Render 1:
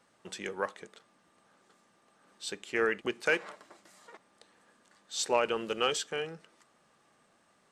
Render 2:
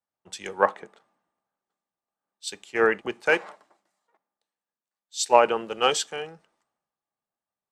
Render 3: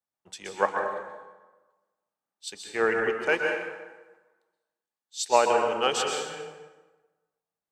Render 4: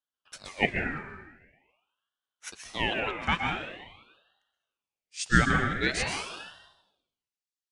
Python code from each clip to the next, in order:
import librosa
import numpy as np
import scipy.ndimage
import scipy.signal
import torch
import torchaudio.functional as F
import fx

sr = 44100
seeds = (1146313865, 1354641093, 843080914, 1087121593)

y1 = fx.peak_eq(x, sr, hz=810.0, db=7.5, octaves=0.76)
y1 = fx.rider(y1, sr, range_db=3, speed_s=2.0)
y1 = fx.band_widen(y1, sr, depth_pct=100)
y2 = fx.rev_plate(y1, sr, seeds[0], rt60_s=1.2, hf_ratio=0.7, predelay_ms=110, drr_db=1.5)
y2 = F.gain(torch.from_numpy(y2), -4.0).numpy()
y3 = scipy.signal.sosfilt(scipy.signal.butter(4, 8500.0, 'lowpass', fs=sr, output='sos'), y2)
y3 = fx.filter_sweep_highpass(y3, sr, from_hz=700.0, to_hz=4000.0, start_s=6.46, end_s=7.49, q=1.4)
y3 = fx.ring_lfo(y3, sr, carrier_hz=1500.0, swing_pct=55, hz=0.45)